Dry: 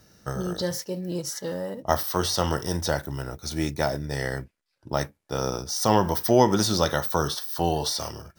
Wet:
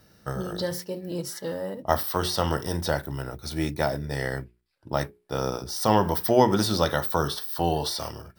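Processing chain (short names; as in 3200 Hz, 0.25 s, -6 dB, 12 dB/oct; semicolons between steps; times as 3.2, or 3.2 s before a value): bell 6400 Hz -9 dB 0.42 oct; notches 60/120/180/240/300/360/420 Hz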